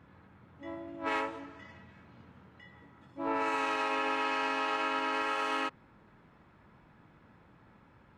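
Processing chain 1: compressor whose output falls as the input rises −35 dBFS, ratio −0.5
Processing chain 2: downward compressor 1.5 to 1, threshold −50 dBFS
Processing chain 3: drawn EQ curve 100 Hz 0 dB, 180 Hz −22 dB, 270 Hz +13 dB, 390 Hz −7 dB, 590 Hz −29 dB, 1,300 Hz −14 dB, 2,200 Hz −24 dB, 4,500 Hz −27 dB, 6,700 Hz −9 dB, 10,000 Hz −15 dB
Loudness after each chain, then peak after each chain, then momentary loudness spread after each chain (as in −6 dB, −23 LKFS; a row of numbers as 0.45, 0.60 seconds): −37.5, −40.5, −34.5 LKFS; −21.0, −26.5, −21.5 dBFS; 21, 21, 12 LU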